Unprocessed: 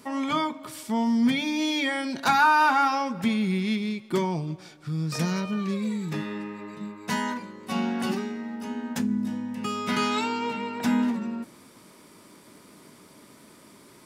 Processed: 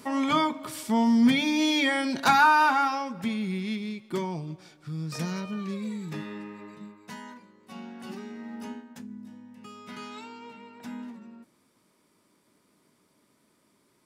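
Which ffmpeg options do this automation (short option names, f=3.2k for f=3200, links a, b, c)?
-af "volume=13.5dB,afade=t=out:st=2.16:d=0.9:silence=0.446684,afade=t=out:st=6.65:d=0.49:silence=0.334965,afade=t=in:st=8.02:d=0.63:silence=0.266073,afade=t=out:st=8.65:d=0.2:silence=0.237137"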